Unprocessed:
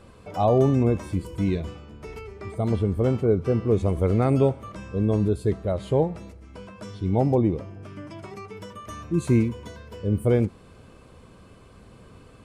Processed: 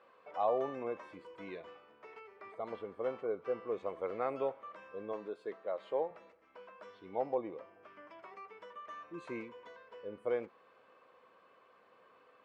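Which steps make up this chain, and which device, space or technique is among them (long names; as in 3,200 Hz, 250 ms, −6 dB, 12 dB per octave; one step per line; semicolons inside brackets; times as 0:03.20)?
tin-can telephone (band-pass filter 700–2,300 Hz; hollow resonant body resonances 510/1,100/1,800 Hz, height 6 dB)
0:05.13–0:06.11: high-pass filter 190 Hz 12 dB per octave
level −7 dB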